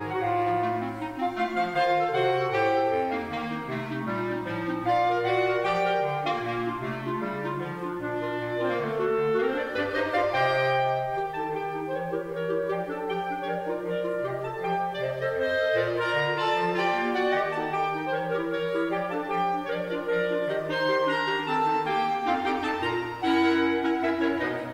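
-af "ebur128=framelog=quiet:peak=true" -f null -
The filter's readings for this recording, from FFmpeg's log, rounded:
Integrated loudness:
  I:         -27.0 LUFS
  Threshold: -37.0 LUFS
Loudness range:
  LRA:         3.6 LU
  Threshold: -47.1 LUFS
  LRA low:   -29.4 LUFS
  LRA high:  -25.8 LUFS
True peak:
  Peak:      -11.9 dBFS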